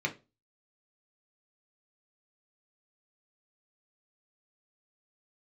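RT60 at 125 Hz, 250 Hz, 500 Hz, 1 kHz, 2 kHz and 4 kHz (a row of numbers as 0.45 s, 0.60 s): 0.35 s, 0.35 s, 0.30 s, 0.25 s, 0.25 s, 0.25 s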